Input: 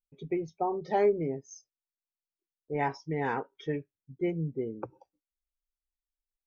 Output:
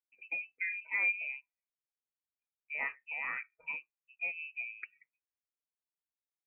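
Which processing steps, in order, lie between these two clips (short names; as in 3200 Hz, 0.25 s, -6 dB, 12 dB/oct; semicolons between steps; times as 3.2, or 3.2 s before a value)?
HPF 220 Hz 12 dB/oct; inverted band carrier 2800 Hz; gain -6.5 dB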